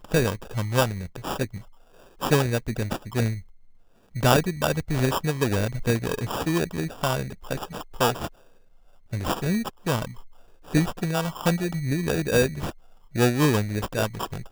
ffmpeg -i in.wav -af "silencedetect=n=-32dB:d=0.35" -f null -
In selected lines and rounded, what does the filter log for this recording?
silence_start: 1.59
silence_end: 2.22 | silence_duration: 0.62
silence_start: 3.39
silence_end: 4.16 | silence_duration: 0.77
silence_start: 8.27
silence_end: 9.13 | silence_duration: 0.85
silence_start: 10.20
silence_end: 10.73 | silence_duration: 0.53
silence_start: 12.70
silence_end: 13.15 | silence_duration: 0.45